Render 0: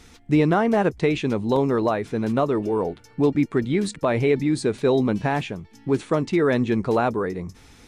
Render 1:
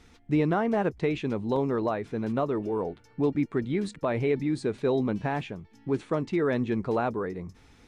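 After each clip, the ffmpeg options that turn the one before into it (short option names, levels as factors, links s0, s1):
-af "highshelf=f=5400:g=-9.5,volume=0.501"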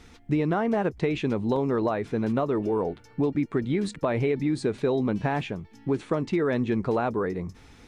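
-af "acompressor=threshold=0.0501:ratio=6,volume=1.78"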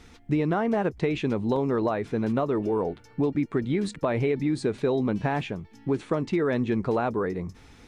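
-af anull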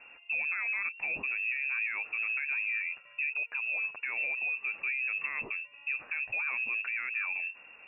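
-af "alimiter=level_in=1.06:limit=0.0631:level=0:latency=1:release=40,volume=0.944,lowpass=f=2400:t=q:w=0.5098,lowpass=f=2400:t=q:w=0.6013,lowpass=f=2400:t=q:w=0.9,lowpass=f=2400:t=q:w=2.563,afreqshift=-2800,volume=0.794"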